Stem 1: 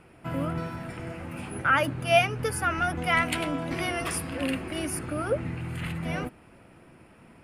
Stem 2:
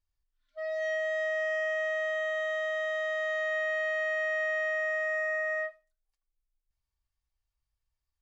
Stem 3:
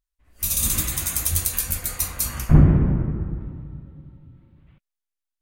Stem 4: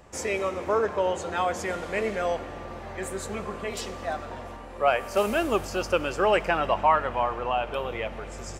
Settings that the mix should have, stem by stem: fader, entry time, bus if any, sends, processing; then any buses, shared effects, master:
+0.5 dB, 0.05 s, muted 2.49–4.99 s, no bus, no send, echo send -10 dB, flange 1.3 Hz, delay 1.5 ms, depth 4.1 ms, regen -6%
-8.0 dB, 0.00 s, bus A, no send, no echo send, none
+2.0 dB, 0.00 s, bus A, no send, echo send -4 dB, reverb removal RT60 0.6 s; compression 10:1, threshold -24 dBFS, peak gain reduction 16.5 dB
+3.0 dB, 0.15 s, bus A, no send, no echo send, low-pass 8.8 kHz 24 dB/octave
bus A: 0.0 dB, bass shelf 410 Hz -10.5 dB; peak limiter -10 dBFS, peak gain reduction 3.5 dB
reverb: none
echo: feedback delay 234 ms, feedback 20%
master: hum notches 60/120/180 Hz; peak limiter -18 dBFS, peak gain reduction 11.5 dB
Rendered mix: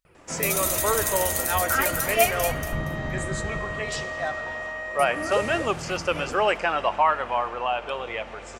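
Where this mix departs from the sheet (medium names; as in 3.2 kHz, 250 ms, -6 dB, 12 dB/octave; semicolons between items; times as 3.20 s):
stem 2 -8.0 dB -> -2.0 dB; master: missing peak limiter -18 dBFS, peak gain reduction 11.5 dB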